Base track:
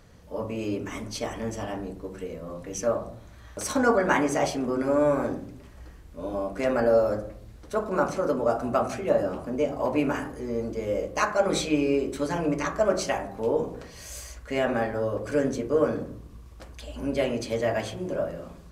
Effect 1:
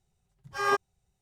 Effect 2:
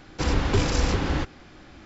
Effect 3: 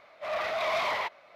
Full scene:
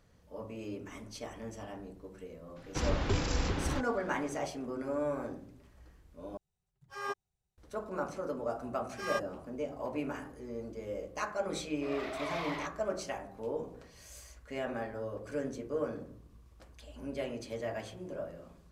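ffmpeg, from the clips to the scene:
ffmpeg -i bed.wav -i cue0.wav -i cue1.wav -i cue2.wav -filter_complex "[1:a]asplit=2[link_01][link_02];[0:a]volume=-11.5dB[link_03];[link_02]tiltshelf=frequency=700:gain=-8.5[link_04];[3:a]dynaudnorm=framelen=180:gausssize=3:maxgain=6dB[link_05];[link_03]asplit=2[link_06][link_07];[link_06]atrim=end=6.374[link_08];[link_01]atrim=end=1.21,asetpts=PTS-STARTPTS,volume=-12dB[link_09];[link_07]atrim=start=7.576[link_10];[2:a]atrim=end=1.85,asetpts=PTS-STARTPTS,volume=-8.5dB,afade=type=in:duration=0.004:curve=hsin,afade=type=out:start_time=1.846:duration=0.004:curve=hsin,adelay=2560[link_11];[link_04]atrim=end=1.21,asetpts=PTS-STARTPTS,volume=-14dB,afade=type=in:duration=0.004:curve=hsin,afade=type=out:start_time=1.206:duration=0.004:curve=hsin,adelay=8430[link_12];[link_05]atrim=end=1.35,asetpts=PTS-STARTPTS,volume=-15.5dB,afade=type=in:duration=0.004:curve=hsin,afade=type=out:start_time=1.346:duration=0.004:curve=hsin,adelay=11590[link_13];[link_08][link_09]acrossfade=duration=0.004:curve1=hsin:curve2=hsin[link_14];[link_14][link_10]acrossfade=duration=0.004:curve1=hsin:curve2=hsin[link_15];[link_15][link_11][link_12][link_13]amix=inputs=4:normalize=0" out.wav

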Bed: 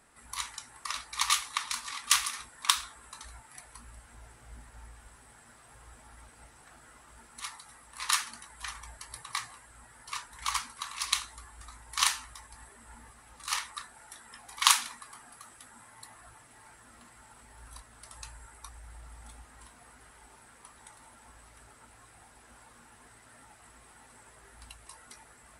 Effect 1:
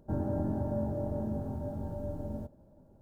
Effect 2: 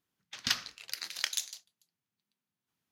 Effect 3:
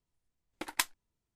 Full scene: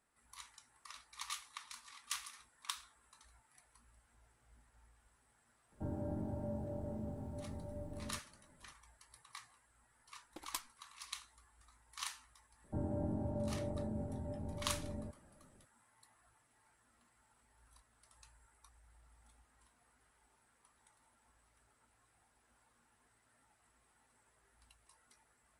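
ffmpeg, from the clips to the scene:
ffmpeg -i bed.wav -i cue0.wav -i cue1.wav -i cue2.wav -filter_complex "[1:a]asplit=2[link_01][link_02];[0:a]volume=-17.5dB[link_03];[3:a]equalizer=frequency=1900:width=1.5:gain=-13[link_04];[link_02]lowpass=1500[link_05];[link_01]atrim=end=3.01,asetpts=PTS-STARTPTS,volume=-9dB,afade=type=in:duration=0.004:curve=hsin,afade=type=out:start_time=3.006:duration=0.004:curve=hsin,adelay=5720[link_06];[link_04]atrim=end=1.35,asetpts=PTS-STARTPTS,volume=-10.5dB,afade=type=in:duration=0.004:curve=hsin,afade=type=out:start_time=1.346:duration=0.004:curve=hsin,adelay=9750[link_07];[link_05]atrim=end=3.01,asetpts=PTS-STARTPTS,volume=-6.5dB,afade=type=in:duration=0.004:curve=hsin,afade=type=out:start_time=3.006:duration=0.004:curve=hsin,adelay=12640[link_08];[link_03][link_06][link_07][link_08]amix=inputs=4:normalize=0" out.wav

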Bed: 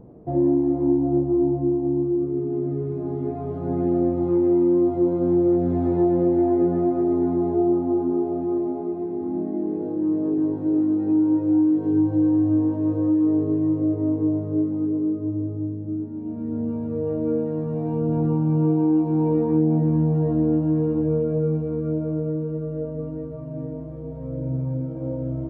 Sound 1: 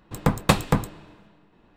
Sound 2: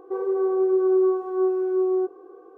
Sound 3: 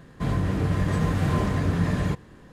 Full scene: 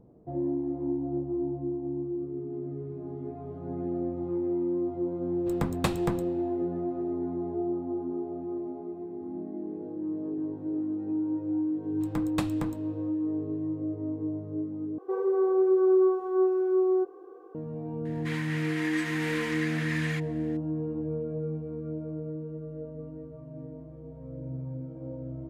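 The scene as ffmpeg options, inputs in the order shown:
ffmpeg -i bed.wav -i cue0.wav -i cue1.wav -i cue2.wav -filter_complex "[1:a]asplit=2[link_01][link_02];[0:a]volume=-10.5dB[link_03];[3:a]highpass=frequency=2000:width_type=q:width=3[link_04];[link_03]asplit=2[link_05][link_06];[link_05]atrim=end=14.984[link_07];[2:a]atrim=end=2.57,asetpts=PTS-STARTPTS,volume=-2dB[link_08];[link_06]atrim=start=17.546[link_09];[link_01]atrim=end=1.76,asetpts=PTS-STARTPTS,volume=-10dB,afade=type=in:duration=0.004:curve=hsin,afade=type=out:start_time=1.756:duration=0.004:curve=hsin,adelay=5350[link_10];[link_02]atrim=end=1.76,asetpts=PTS-STARTPTS,volume=-14.5dB,afade=type=in:duration=0.004:curve=hsin,afade=type=out:start_time=1.756:duration=0.004:curve=hsin,adelay=11890[link_11];[link_04]atrim=end=2.52,asetpts=PTS-STARTPTS,volume=-2dB,afade=type=in:duration=0.004:curve=hsin,afade=type=out:start_time=2.516:duration=0.004:curve=hsin,adelay=18050[link_12];[link_07][link_08]acrossfade=duration=0.004:curve1=hsin:curve2=hsin[link_13];[link_13][link_09]acrossfade=duration=0.004:curve1=hsin:curve2=hsin[link_14];[link_14][link_10][link_11][link_12]amix=inputs=4:normalize=0" out.wav

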